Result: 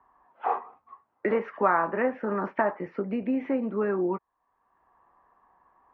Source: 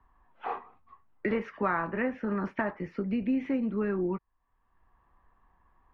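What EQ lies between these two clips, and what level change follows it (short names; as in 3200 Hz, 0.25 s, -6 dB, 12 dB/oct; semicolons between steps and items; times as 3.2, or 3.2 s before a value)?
band-pass 740 Hz, Q 0.92; +8.5 dB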